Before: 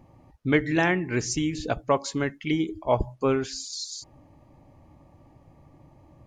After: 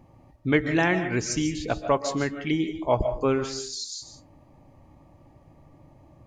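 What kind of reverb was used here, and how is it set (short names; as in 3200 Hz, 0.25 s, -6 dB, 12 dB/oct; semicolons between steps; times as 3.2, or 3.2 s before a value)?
digital reverb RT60 0.41 s, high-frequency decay 0.45×, pre-delay 0.105 s, DRR 8.5 dB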